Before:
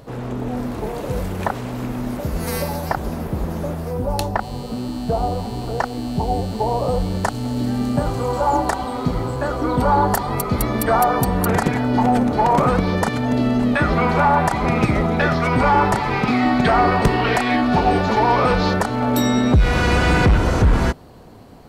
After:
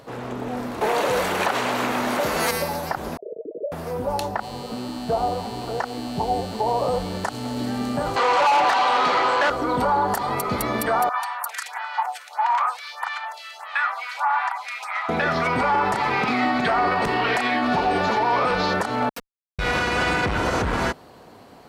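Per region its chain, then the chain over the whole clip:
0.81–2.51 notch 5100 Hz, Q 22 + overdrive pedal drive 18 dB, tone 7600 Hz, clips at -8.5 dBFS
3.17–3.72 sine-wave speech + rippled Chebyshev low-pass 650 Hz, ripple 9 dB
8.16–9.5 HPF 930 Hz 6 dB/oct + air absorption 110 m + overdrive pedal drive 26 dB, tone 3900 Hz, clips at -10.5 dBFS
11.09–15.09 steep high-pass 850 Hz + photocell phaser 1.6 Hz
19.09–19.59 pre-emphasis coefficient 0.97 + Schmitt trigger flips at -20.5 dBFS + comb 4.2 ms, depth 87%
whole clip: HPF 1300 Hz 6 dB/oct; tilt -2 dB/oct; limiter -18.5 dBFS; gain +5.5 dB

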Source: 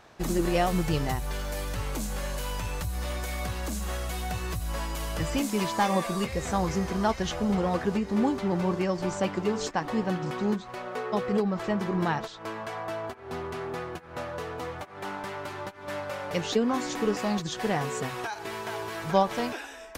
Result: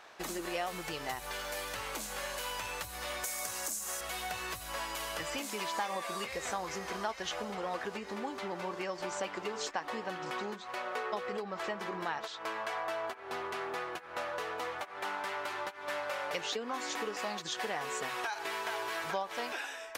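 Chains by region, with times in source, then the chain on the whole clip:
3.24–4.01 HPF 90 Hz + resonant high shelf 4900 Hz +10.5 dB, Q 1.5
whole clip: tilt shelf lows -4 dB, about 830 Hz; compressor, threshold -31 dBFS; tone controls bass -15 dB, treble -4 dB

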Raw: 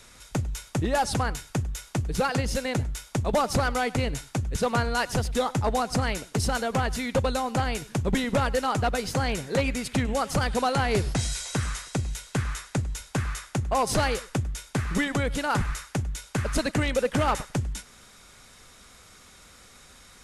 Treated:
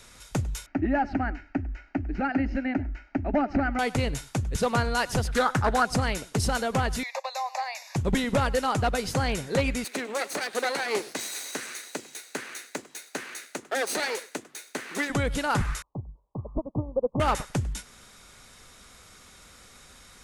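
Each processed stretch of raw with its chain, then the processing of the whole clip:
0.66–3.79 inverse Chebyshev low-pass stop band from 9800 Hz, stop band 60 dB + bell 280 Hz +10.5 dB 0.36 oct + fixed phaser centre 710 Hz, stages 8
5.27–5.85 bell 1500 Hz +13.5 dB 0.56 oct + Doppler distortion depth 0.28 ms
7.03–7.96 steep high-pass 520 Hz 72 dB/oct + upward compressor, threshold -32 dBFS + fixed phaser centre 2100 Hz, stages 8
9.84–15.1 minimum comb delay 0.47 ms + HPF 300 Hz 24 dB/oct
15.82–17.2 steep low-pass 1100 Hz 96 dB/oct + upward expander 2.5:1, over -33 dBFS
whole clip: dry

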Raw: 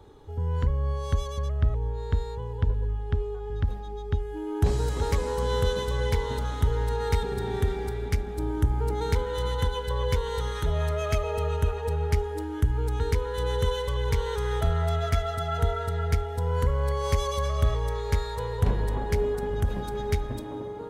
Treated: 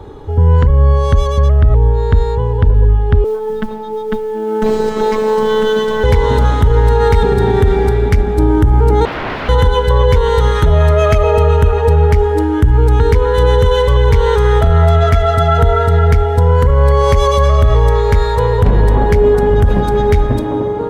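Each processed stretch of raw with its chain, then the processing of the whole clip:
3.24–6.04 BPF 140–7000 Hz + robotiser 217 Hz + modulation noise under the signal 26 dB
9.05–9.49 notches 50/100/150 Hz + wrapped overs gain 30 dB + air absorption 330 m
whole clip: high shelf 3200 Hz -11 dB; maximiser +20 dB; gain -1 dB

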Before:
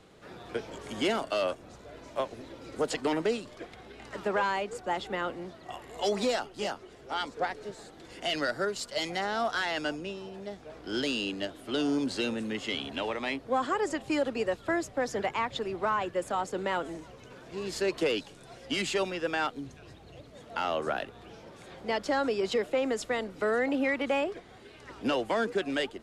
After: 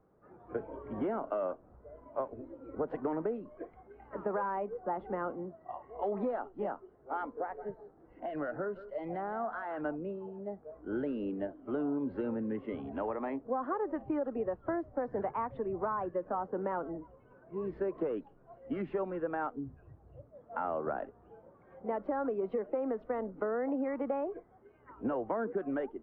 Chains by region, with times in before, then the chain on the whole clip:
7.41–9.81 compressor 3:1, threshold -31 dBFS + echo 0.169 s -13 dB + mismatched tape noise reduction decoder only
whole clip: LPF 1300 Hz 24 dB/oct; spectral noise reduction 11 dB; compressor, threshold -30 dBFS

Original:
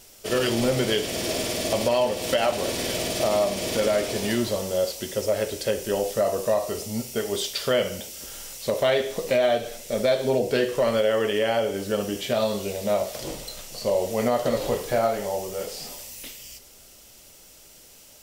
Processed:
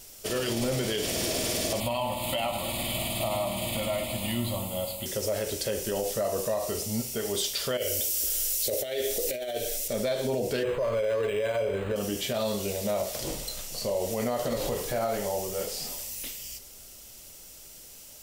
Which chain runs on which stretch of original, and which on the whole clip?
1.8–5.06 fixed phaser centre 1600 Hz, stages 6 + doubler 17 ms -12 dB + analogue delay 0.112 s, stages 1024, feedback 62%, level -10 dB
7.77–9.88 high shelf 9400 Hz +9.5 dB + negative-ratio compressor -24 dBFS, ratio -0.5 + fixed phaser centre 430 Hz, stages 4
10.63–11.96 comb 1.9 ms, depth 89% + decimation joined by straight lines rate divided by 8×
whole clip: low shelf 130 Hz +5 dB; limiter -18.5 dBFS; high shelf 5500 Hz +6.5 dB; gain -2 dB

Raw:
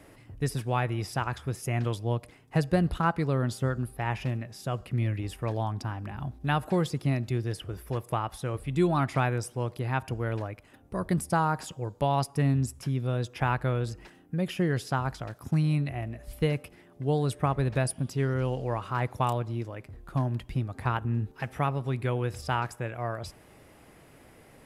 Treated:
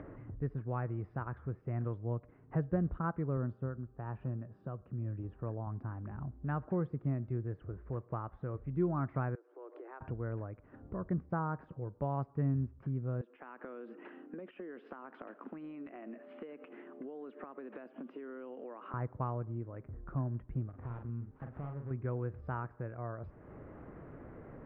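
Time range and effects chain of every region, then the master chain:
3.37–5.67 HPF 60 Hz + bell 2100 Hz -12.5 dB 0.25 oct + tremolo 1 Hz, depth 41%
9.35–10.01 compressor, threshold -41 dBFS + steep high-pass 300 Hz 96 dB/oct
13.21–18.94 steep high-pass 230 Hz 48 dB/oct + bell 2900 Hz +13.5 dB 0.81 oct + compressor 10:1, threshold -39 dBFS
20.69–21.91 switching dead time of 0.3 ms + compressor 1.5:1, threshold -46 dBFS + doubler 42 ms -5.5 dB
whole clip: LPF 1400 Hz 24 dB/oct; bell 810 Hz -6.5 dB 0.79 oct; upward compressor, threshold -30 dBFS; gain -7 dB

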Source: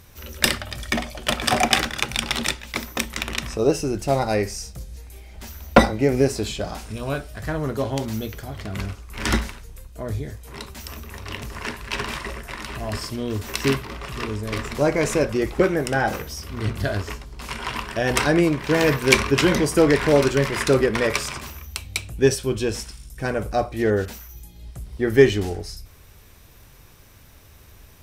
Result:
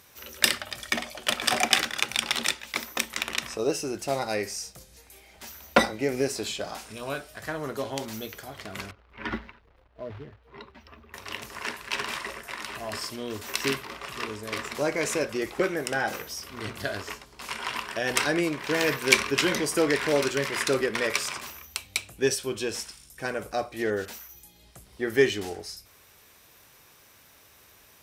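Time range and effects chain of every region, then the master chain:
8.91–11.14 spectral contrast raised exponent 1.5 + short-mantissa float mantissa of 2-bit + air absorption 330 m
whole clip: HPF 540 Hz 6 dB/oct; dynamic EQ 830 Hz, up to -4 dB, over -30 dBFS, Q 0.84; gain -1.5 dB

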